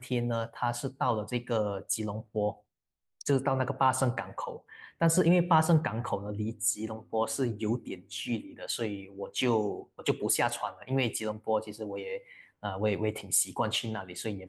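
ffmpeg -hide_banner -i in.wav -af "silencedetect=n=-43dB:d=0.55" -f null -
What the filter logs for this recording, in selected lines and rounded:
silence_start: 2.53
silence_end: 3.21 | silence_duration: 0.68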